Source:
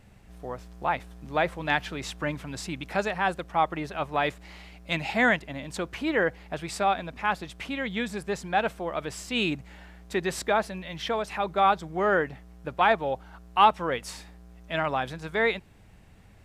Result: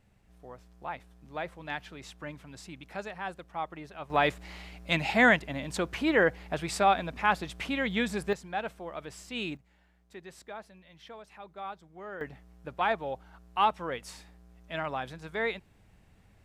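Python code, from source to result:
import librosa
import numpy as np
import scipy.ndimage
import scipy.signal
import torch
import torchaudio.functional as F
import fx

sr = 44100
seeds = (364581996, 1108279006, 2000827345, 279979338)

y = fx.gain(x, sr, db=fx.steps((0.0, -11.0), (4.1, 1.0), (8.33, -8.5), (9.57, -18.5), (12.21, -6.5)))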